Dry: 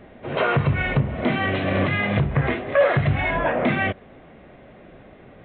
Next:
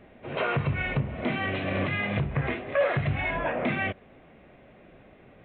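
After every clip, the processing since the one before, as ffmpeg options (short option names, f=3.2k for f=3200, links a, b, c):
-af "equalizer=f=2.5k:t=o:w=0.38:g=4.5,volume=-7dB"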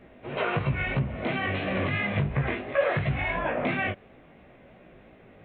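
-af "flanger=delay=15.5:depth=4.6:speed=2.9,volume=3.5dB"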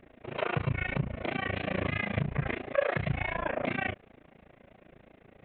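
-af "tremolo=f=28:d=0.974"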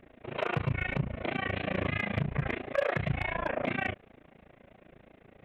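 -af "asoftclip=type=hard:threshold=-20dB"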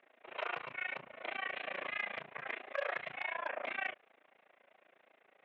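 -af "highpass=740,lowpass=4.5k,volume=-4dB"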